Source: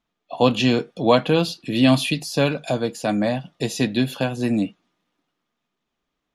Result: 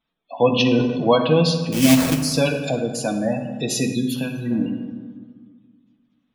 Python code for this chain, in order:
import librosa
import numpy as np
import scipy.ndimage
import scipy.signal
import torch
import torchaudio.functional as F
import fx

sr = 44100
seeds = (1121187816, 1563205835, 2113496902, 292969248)

y = fx.spec_gate(x, sr, threshold_db=-20, keep='strong')
y = fx.sample_hold(y, sr, seeds[0], rate_hz=2900.0, jitter_pct=20, at=(1.72, 2.22))
y = fx.high_shelf(y, sr, hz=2700.0, db=10.0)
y = fx.notch(y, sr, hz=1200.0, q=24.0)
y = fx.rev_fdn(y, sr, rt60_s=1.6, lf_ratio=1.35, hf_ratio=0.55, size_ms=36.0, drr_db=3.5)
y = fx.transient(y, sr, attack_db=0, sustain_db=5, at=(0.66, 1.14))
y = fx.peak_eq(y, sr, hz=fx.line((3.94, 1500.0), (4.5, 540.0)), db=-13.0, octaves=1.8, at=(3.94, 4.5), fade=0.02)
y = y * librosa.db_to_amplitude(-2.0)